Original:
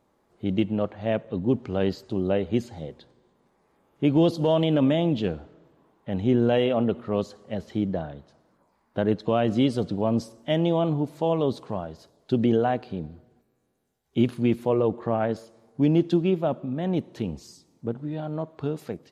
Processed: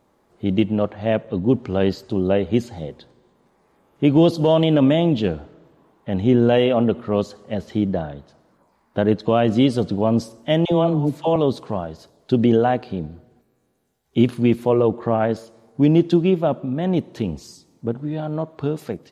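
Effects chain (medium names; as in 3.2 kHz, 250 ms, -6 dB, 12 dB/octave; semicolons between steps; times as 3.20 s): 10.65–11.36 s: phase dispersion lows, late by 66 ms, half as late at 630 Hz; trim +5.5 dB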